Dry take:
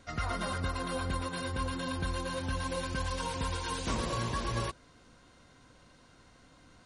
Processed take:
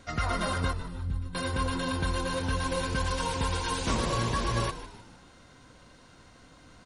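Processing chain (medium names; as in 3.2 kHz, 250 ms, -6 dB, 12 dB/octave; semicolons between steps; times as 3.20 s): 0.73–1.35 s: FFT filter 130 Hz 0 dB, 740 Hz -27 dB, 1.4 kHz -20 dB; on a send: frequency-shifting echo 152 ms, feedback 43%, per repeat -77 Hz, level -13 dB; on the sum: trim +4.5 dB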